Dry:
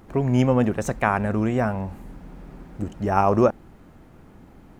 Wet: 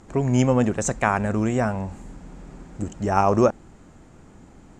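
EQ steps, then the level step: resonant low-pass 7.4 kHz, resonance Q 4.8; 0.0 dB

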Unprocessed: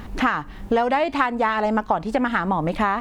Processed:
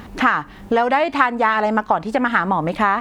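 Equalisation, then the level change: high-pass 100 Hz 6 dB/octave; dynamic bell 1.5 kHz, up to +4 dB, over -30 dBFS, Q 0.99; +2.0 dB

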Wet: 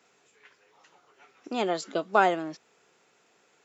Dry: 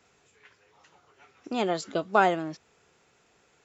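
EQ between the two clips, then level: high-pass 210 Hz 12 dB/octave; 0.0 dB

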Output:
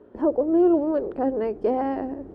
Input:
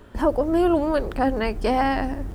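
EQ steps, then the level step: band-pass filter 400 Hz, Q 1.8; +3.0 dB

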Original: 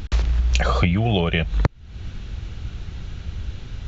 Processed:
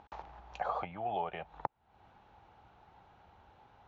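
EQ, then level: band-pass filter 840 Hz, Q 5.9; 0.0 dB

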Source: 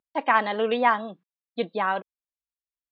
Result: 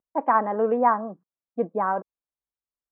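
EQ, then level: low-pass 1.3 kHz 24 dB/octave; distance through air 150 m; +2.5 dB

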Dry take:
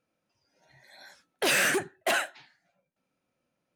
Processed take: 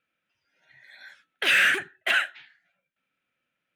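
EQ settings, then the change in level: high-order bell 2.2 kHz +14 dB; -7.5 dB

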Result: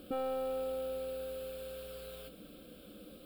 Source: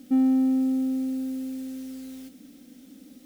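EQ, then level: treble shelf 2.7 kHz -9 dB; static phaser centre 1.3 kHz, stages 8; +9.0 dB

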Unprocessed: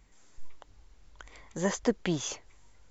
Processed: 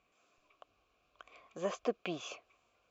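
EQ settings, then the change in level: vowel filter a; peaking EQ 800 Hz -14.5 dB 0.63 oct; +12.0 dB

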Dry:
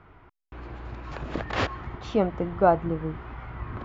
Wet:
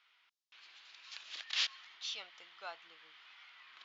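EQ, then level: Butterworth band-pass 4.6 kHz, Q 1.3; +6.0 dB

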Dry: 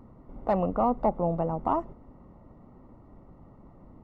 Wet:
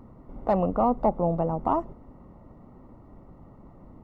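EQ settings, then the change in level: dynamic bell 2 kHz, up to -3 dB, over -41 dBFS, Q 0.91; +2.5 dB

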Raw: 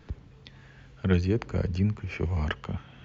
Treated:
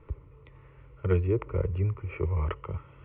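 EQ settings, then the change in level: low-pass 2 kHz 24 dB/octave; static phaser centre 1.1 kHz, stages 8; +2.5 dB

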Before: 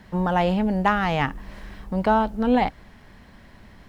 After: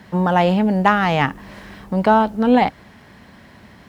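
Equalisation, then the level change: high-pass 94 Hz 12 dB/octave; +5.5 dB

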